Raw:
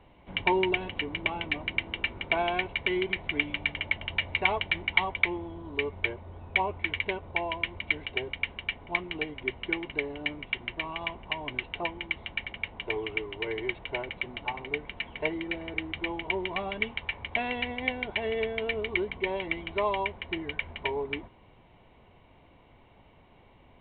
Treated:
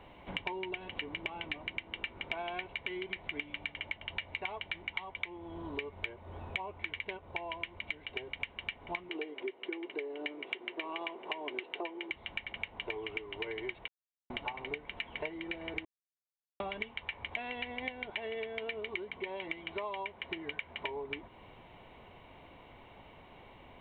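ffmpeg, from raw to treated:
-filter_complex "[0:a]asettb=1/sr,asplit=3[s0][s1][s2];[s0]atrim=end=9.094[s3];[s1]atrim=start=9.09:end=12.11,asetpts=PTS-STARTPTS,afade=t=in:d=0.004:c=qsin,afade=t=out:st=3.016:d=0.004:c=qsin,highpass=f=370:t=q:w=3.6[s4];[s2]atrim=start=12.106[s5];[s3][s4]acrossfade=d=0.004:c1=hsin:c2=qsin[s6];[s6][s5]acrossfade=d=0.004:c1=qsin:c2=hsin,asettb=1/sr,asplit=3[s7][s8][s9];[s7]atrim=end=18.104[s10];[s8]atrim=start=18.1:end=20.87,asetpts=PTS-STARTPTS,afade=t=in:d=0.004:c=qsin,afade=t=out:st=2.766:d=0.004:c=qsin,highpass=f=120:p=1[s11];[s9]atrim=start=20.866[s12];[s10][s11]acrossfade=d=0.004:c1=hsin:c2=qsin[s13];[s13][s12]acrossfade=d=0.004:c1=qsin:c2=hsin,asplit=7[s14][s15][s16][s17][s18][s19][s20];[s14]atrim=end=7.172[s21];[s15]atrim=start=7.168:end=8.402,asetpts=PTS-STARTPTS,volume=0.668[s22];[s16]atrim=start=8.398:end=13.88,asetpts=PTS-STARTPTS,afade=t=out:st=5.478:d=0.004:c=hsin[s23];[s17]atrim=start=13.88:end=14.3,asetpts=PTS-STARTPTS,volume=0[s24];[s18]atrim=start=14.3:end=15.85,asetpts=PTS-STARTPTS,afade=t=in:d=0.004:c=hsin,afade=t=out:st=1.546:d=0.004:c=hsin[s25];[s19]atrim=start=15.85:end=16.6,asetpts=PTS-STARTPTS,volume=0[s26];[s20]atrim=start=16.6,asetpts=PTS-STARTPTS,afade=t=in:d=0.004:c=hsin[s27];[s21][s22]acrossfade=d=0.004:c1=hsin:c2=hsin[s28];[s23][s24][s25][s26][s27]concat=n=5:v=0:a=1[s29];[s28][s29]acrossfade=d=0.004:c1=hsin:c2=hsin,acompressor=threshold=0.01:ratio=10,lowshelf=f=300:g=-6.5,volume=1.88"

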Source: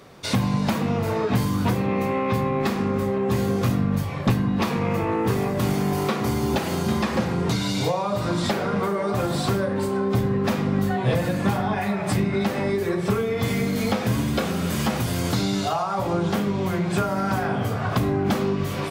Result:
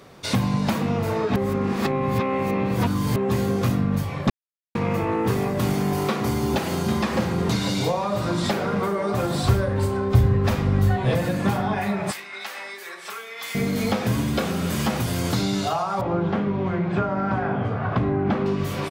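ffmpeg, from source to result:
-filter_complex "[0:a]asplit=2[s0][s1];[s1]afade=t=in:st=6.6:d=0.01,afade=t=out:st=7.24:d=0.01,aecho=0:1:500|1000|1500|2000|2500|3000|3500:0.298538|0.179123|0.107474|0.0644843|0.0386906|0.0232143|0.0139286[s2];[s0][s2]amix=inputs=2:normalize=0,asettb=1/sr,asplit=3[s3][s4][s5];[s3]atrim=end=9.434[s6];[s4]atrim=start=9.43:end=11.05,asetpts=PTS-STARTPTS,afade=t=in:d=0.004:c=qsin,afade=t=out:st=1.616:d=0.004:c=qsin,lowshelf=f=120:t=q:w=1.5:g=13[s7];[s5]atrim=start=11.046[s8];[s6][s7]acrossfade=d=0.004:c1=hsin:c2=qsin[s9];[s9][s8]acrossfade=d=0.004:c1=qsin:c2=hsin,asettb=1/sr,asplit=3[s10][s11][s12];[s10]atrim=end=12.114[s13];[s11]atrim=start=12.11:end=13.55,asetpts=PTS-STARTPTS,afade=t=in:d=0.004:c=qsin,afade=t=out:st=1.436:d=0.004:c=qsin,highpass=1300[s14];[s12]atrim=start=13.546[s15];[s13][s14]acrossfade=d=0.004:c1=hsin:c2=qsin[s16];[s16][s15]acrossfade=d=0.004:c1=qsin:c2=hsin,asettb=1/sr,asplit=3[s17][s18][s19];[s17]atrim=end=16.014[s20];[s18]atrim=start=16.01:end=18.46,asetpts=PTS-STARTPTS,afade=t=in:d=0.004:c=qsin,afade=t=out:st=2.446:d=0.004:c=qsin,lowpass=2200[s21];[s19]atrim=start=18.456[s22];[s20][s21]acrossfade=d=0.004:c1=hsin:c2=qsin[s23];[s23][s22]acrossfade=d=0.004:c1=qsin:c2=hsin,asplit=5[s24][s25][s26][s27][s28];[s24]atrim=end=1.362[s29];[s25]atrim=start=1.358:end=3.162,asetpts=PTS-STARTPTS,areverse[s30];[s26]atrim=start=3.158:end=4.3,asetpts=PTS-STARTPTS,afade=t=out:st=1.138:d=0.004:c=hsin[s31];[s27]atrim=start=4.3:end=4.75,asetpts=PTS-STARTPTS,volume=0[s32];[s28]atrim=start=4.75,asetpts=PTS-STARTPTS,afade=t=in:d=0.004:c=hsin[s33];[s29][s30]acrossfade=d=0.004:c1=hsin:c2=hsin[s34];[s31][s32][s33]concat=n=3:v=0:a=1[s35];[s34][s35]acrossfade=d=0.004:c1=hsin:c2=hsin"

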